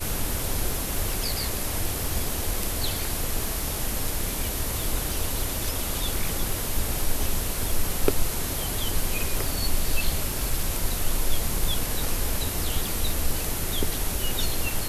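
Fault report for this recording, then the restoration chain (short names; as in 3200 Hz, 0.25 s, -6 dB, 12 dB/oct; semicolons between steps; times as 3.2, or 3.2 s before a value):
crackle 23/s -28 dBFS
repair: de-click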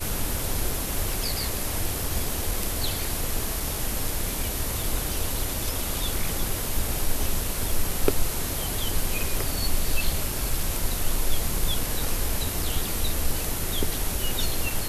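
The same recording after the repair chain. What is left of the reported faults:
none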